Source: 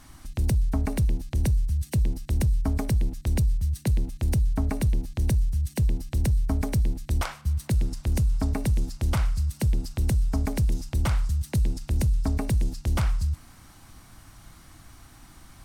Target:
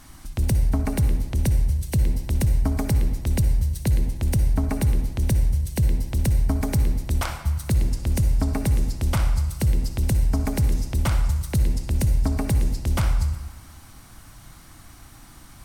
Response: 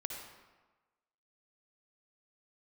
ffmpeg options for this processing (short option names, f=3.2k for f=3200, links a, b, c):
-filter_complex "[0:a]asplit=2[a][b];[1:a]atrim=start_sample=2205,highshelf=f=8.4k:g=7[c];[b][c]afir=irnorm=-1:irlink=0,volume=1.5dB[d];[a][d]amix=inputs=2:normalize=0,volume=-3dB"